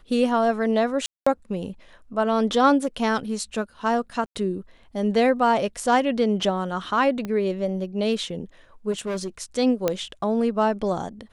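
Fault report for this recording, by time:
1.06–1.26 s: dropout 205 ms
4.26–4.36 s: dropout 96 ms
7.25 s: pop -18 dBFS
8.91–9.28 s: clipped -24.5 dBFS
9.88 s: pop -8 dBFS

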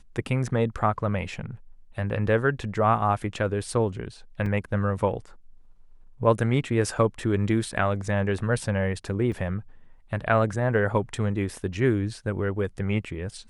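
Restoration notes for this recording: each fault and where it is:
4.46 s: dropout 3 ms
9.32 s: dropout 4.1 ms

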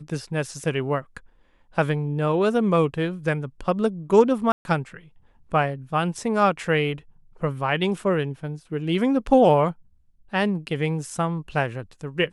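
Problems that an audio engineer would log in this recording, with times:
4.52–4.65 s: dropout 131 ms

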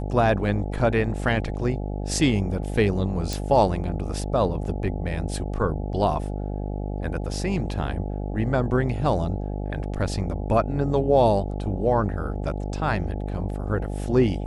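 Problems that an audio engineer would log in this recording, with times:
buzz 50 Hz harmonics 17 -29 dBFS
3.33 s: pop

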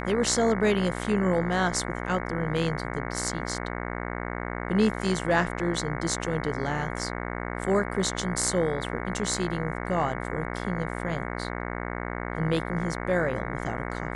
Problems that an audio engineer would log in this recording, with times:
buzz 60 Hz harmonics 37 -33 dBFS

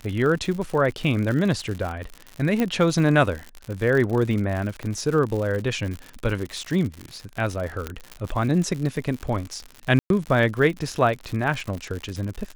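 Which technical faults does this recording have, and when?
crackle 100 per s -28 dBFS
2.60 s: pop -11 dBFS
4.83 s: pop -20 dBFS
7.87 s: pop -14 dBFS
9.99–10.10 s: dropout 112 ms

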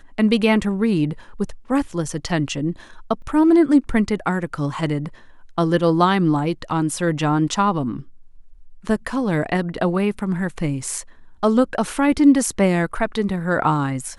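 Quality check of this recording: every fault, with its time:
3.22 s: dropout 2.6 ms

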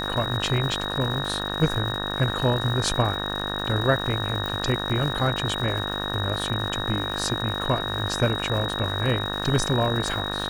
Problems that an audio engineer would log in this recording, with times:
buzz 50 Hz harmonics 37 -31 dBFS
crackle 320 per s -32 dBFS
whine 3.8 kHz -30 dBFS
1.49 s: dropout 4.1 ms
4.46 s: pop

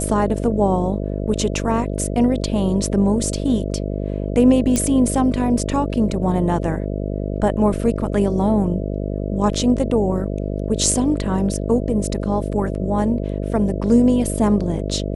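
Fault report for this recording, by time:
buzz 50 Hz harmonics 13 -24 dBFS
4.76 s: pop -6 dBFS

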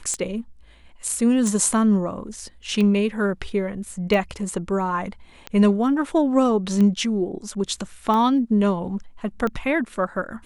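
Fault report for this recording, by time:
tick 45 rpm -14 dBFS

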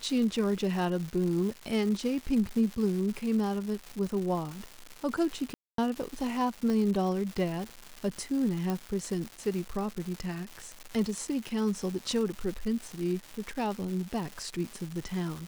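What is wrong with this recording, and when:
crackle 390 per s -35 dBFS
5.54–5.78 s: dropout 243 ms
6.70 s: pop -21 dBFS
8.70 s: pop

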